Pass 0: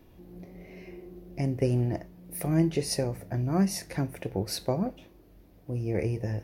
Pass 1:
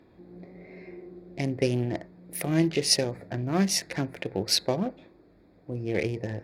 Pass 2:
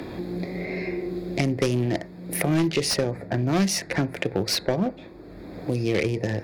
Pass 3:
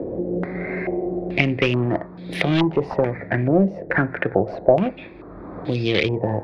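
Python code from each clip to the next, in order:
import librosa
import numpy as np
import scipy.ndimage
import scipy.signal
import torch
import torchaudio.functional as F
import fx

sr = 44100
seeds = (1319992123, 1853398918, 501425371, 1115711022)

y1 = fx.wiener(x, sr, points=15)
y1 = fx.weighting(y1, sr, curve='D')
y1 = F.gain(torch.from_numpy(y1), 2.5).numpy()
y2 = fx.fold_sine(y1, sr, drive_db=8, ceiling_db=-7.5)
y2 = fx.band_squash(y2, sr, depth_pct=70)
y2 = F.gain(torch.from_numpy(y2), -6.5).numpy()
y3 = fx.filter_held_lowpass(y2, sr, hz=2.3, low_hz=520.0, high_hz=3500.0)
y3 = F.gain(torch.from_numpy(y3), 2.5).numpy()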